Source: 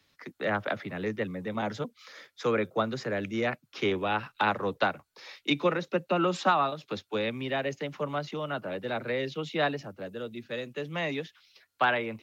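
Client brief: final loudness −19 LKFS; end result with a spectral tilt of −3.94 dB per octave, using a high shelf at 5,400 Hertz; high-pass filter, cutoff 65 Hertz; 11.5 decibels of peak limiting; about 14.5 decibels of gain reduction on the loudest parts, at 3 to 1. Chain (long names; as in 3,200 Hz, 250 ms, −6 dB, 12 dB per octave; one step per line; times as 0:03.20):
high-pass filter 65 Hz
high-shelf EQ 5,400 Hz −6 dB
downward compressor 3 to 1, threshold −41 dBFS
level +27 dB
brickwall limiter −9 dBFS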